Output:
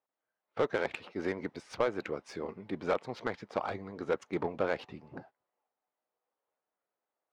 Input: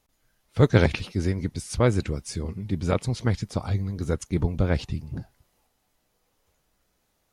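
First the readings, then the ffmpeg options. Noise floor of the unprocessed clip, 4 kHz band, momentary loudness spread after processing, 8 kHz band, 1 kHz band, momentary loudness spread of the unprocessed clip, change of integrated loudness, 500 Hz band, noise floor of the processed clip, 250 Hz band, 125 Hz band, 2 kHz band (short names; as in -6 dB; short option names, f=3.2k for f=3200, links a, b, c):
-72 dBFS, -10.5 dB, 10 LU, under -15 dB, -2.5 dB, 12 LU, -9.5 dB, -5.0 dB, under -85 dBFS, -12.0 dB, -24.0 dB, -5.5 dB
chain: -af "agate=range=-15dB:threshold=-42dB:ratio=16:detection=peak,highpass=580,alimiter=limit=-19dB:level=0:latency=1:release=320,asoftclip=type=tanh:threshold=-25dB,adynamicsmooth=sensitivity=2.5:basefreq=1.4k,volume=6.5dB"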